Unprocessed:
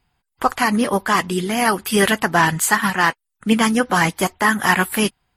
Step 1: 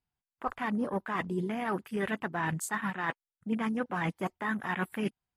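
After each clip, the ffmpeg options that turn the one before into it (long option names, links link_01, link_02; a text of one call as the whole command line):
ffmpeg -i in.wav -af "areverse,acompressor=threshold=-24dB:ratio=5,areverse,equalizer=frequency=170:width=0.34:gain=3,afwtdn=0.02,volume=-7dB" out.wav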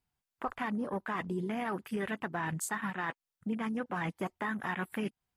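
ffmpeg -i in.wav -af "acompressor=threshold=-35dB:ratio=6,volume=3.5dB" out.wav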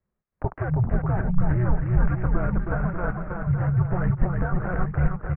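ffmpeg -i in.wav -af "highpass=frequency=150:width_type=q:width=0.5412,highpass=frequency=150:width_type=q:width=1.307,lowpass=frequency=2400:width_type=q:width=0.5176,lowpass=frequency=2400:width_type=q:width=0.7071,lowpass=frequency=2400:width_type=q:width=1.932,afreqshift=-360,aemphasis=mode=reproduction:type=bsi,aecho=1:1:320|592|823.2|1020|1187:0.631|0.398|0.251|0.158|0.1,volume=3.5dB" out.wav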